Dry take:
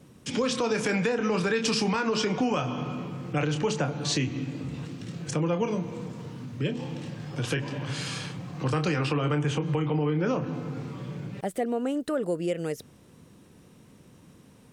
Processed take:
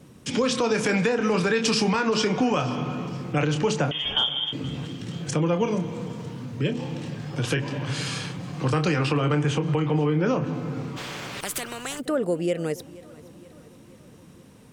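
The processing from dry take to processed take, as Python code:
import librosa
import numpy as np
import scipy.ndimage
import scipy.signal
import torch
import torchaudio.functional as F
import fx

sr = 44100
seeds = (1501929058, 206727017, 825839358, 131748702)

y = fx.freq_invert(x, sr, carrier_hz=3400, at=(3.91, 4.53))
y = fx.echo_feedback(y, sr, ms=475, feedback_pct=56, wet_db=-21)
y = fx.spectral_comp(y, sr, ratio=4.0, at=(10.96, 11.99), fade=0.02)
y = y * 10.0 ** (3.5 / 20.0)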